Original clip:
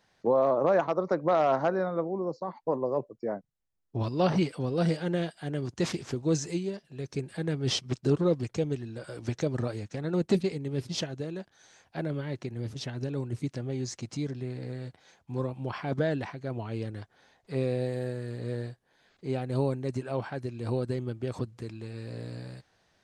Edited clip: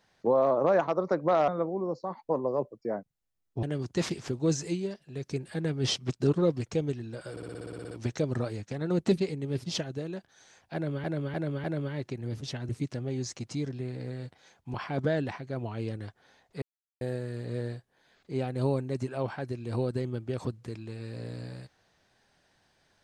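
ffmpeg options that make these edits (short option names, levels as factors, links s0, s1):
-filter_complex "[0:a]asplit=20[s0][s1][s2][s3][s4][s5][s6][s7][s8][s9][s10][s11][s12][s13][s14][s15][s16][s17][s18][s19];[s0]atrim=end=1.482[s20];[s1]atrim=start=1.858:end=4.012[s21];[s2]atrim=start=5.458:end=9.202[s22];[s3]atrim=start=9.138:end=9.202[s23];[s4]atrim=start=9.138:end=9.202[s24];[s5]atrim=start=9.138:end=9.202[s25];[s6]atrim=start=9.138:end=9.202[s26];[s7]atrim=start=9.138:end=9.202[s27];[s8]atrim=start=9.138:end=9.202[s28];[s9]atrim=start=9.138:end=9.202[s29];[s10]atrim=start=9.138:end=9.202[s30];[s11]atrim=start=9.138:end=9.202[s31];[s12]atrim=start=9.138:end=12.272[s32];[s13]atrim=start=11.968:end=12.272[s33];[s14]atrim=start=11.968:end=12.272[s34];[s15]atrim=start=11.968:end=13.022[s35];[s16]atrim=start=13.308:end=15.362[s36];[s17]atrim=start=15.678:end=17.56,asetpts=PTS-STARTPTS,afade=t=out:st=1.878:d=0.004:c=hsin[s37];[s18]atrim=start=17.56:end=17.95,asetpts=PTS-STARTPTS,volume=0[s38];[s19]atrim=start=17.95,asetpts=PTS-STARTPTS,afade=t=in:d=0.004:c=hsin[s39];[s20][s21]acrossfade=d=0.004:c1=hsin:c2=hsin[s40];[s40][s22]acrossfade=d=0.004:c1=hsin:c2=hsin[s41];[s41][s23]acrossfade=d=0.004:c1=hsin:c2=hsin[s42];[s42][s24]acrossfade=d=0.004:c1=hsin:c2=hsin[s43];[s43][s25]acrossfade=d=0.004:c1=hsin:c2=hsin[s44];[s44][s26]acrossfade=d=0.004:c1=hsin:c2=hsin[s45];[s45][s27]acrossfade=d=0.004:c1=hsin:c2=hsin[s46];[s46][s28]acrossfade=d=0.004:c1=hsin:c2=hsin[s47];[s47][s29]acrossfade=d=0.004:c1=hsin:c2=hsin[s48];[s48][s30]acrossfade=d=0.004:c1=hsin:c2=hsin[s49];[s49][s31]acrossfade=d=0.004:c1=hsin:c2=hsin[s50];[s50][s32]acrossfade=d=0.004:c1=hsin:c2=hsin[s51];[s51][s33]acrossfade=d=0.004:c1=hsin:c2=hsin[s52];[s52][s34]acrossfade=d=0.004:c1=hsin:c2=hsin[s53];[s53][s35]acrossfade=d=0.004:c1=hsin:c2=hsin[s54];[s54][s36]acrossfade=d=0.004:c1=hsin:c2=hsin[s55];[s37][s38][s39]concat=n=3:v=0:a=1[s56];[s55][s56]acrossfade=d=0.004:c1=hsin:c2=hsin"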